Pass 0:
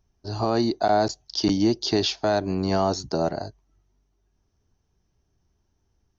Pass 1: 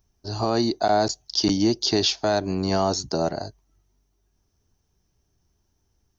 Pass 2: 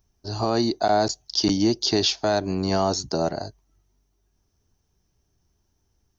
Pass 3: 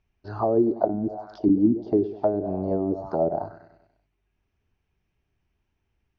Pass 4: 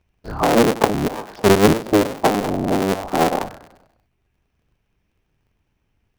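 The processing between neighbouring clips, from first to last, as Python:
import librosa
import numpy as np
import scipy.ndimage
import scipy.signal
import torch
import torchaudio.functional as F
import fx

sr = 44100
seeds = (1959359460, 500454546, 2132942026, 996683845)

y1 = fx.high_shelf(x, sr, hz=6200.0, db=11.5)
y2 = y1
y3 = fx.echo_feedback(y2, sr, ms=97, feedback_pct=55, wet_db=-14.0)
y3 = fx.envelope_lowpass(y3, sr, base_hz=230.0, top_hz=2500.0, q=3.5, full_db=-15.0, direction='down')
y3 = F.gain(torch.from_numpy(y3), -5.0).numpy()
y4 = fx.cycle_switch(y3, sr, every=3, mode='inverted')
y4 = F.gain(torch.from_numpy(y4), 6.0).numpy()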